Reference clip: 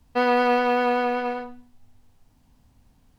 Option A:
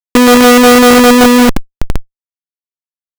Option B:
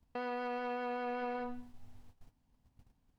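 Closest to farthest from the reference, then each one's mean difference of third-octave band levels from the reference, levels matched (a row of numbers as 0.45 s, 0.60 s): B, A; 4.0 dB, 12.0 dB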